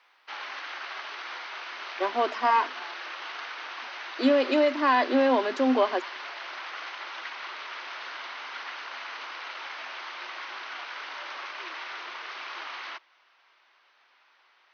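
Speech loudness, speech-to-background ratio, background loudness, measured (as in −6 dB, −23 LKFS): −24.5 LKFS, 12.5 dB, −37.0 LKFS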